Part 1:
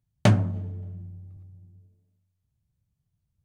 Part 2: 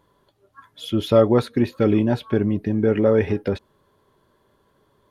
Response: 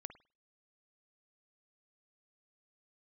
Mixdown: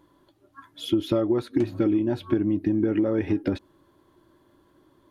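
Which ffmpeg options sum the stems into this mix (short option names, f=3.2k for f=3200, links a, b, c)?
-filter_complex "[0:a]adelay=1350,volume=-0.5dB[a];[1:a]volume=-0.5dB,asplit=2[b][c];[c]apad=whole_len=211344[d];[a][d]sidechaincompress=threshold=-24dB:ratio=5:attack=12:release=804[e];[e][b]amix=inputs=2:normalize=0,superequalizer=6b=3.55:7b=0.631,acompressor=threshold=-19dB:ratio=12"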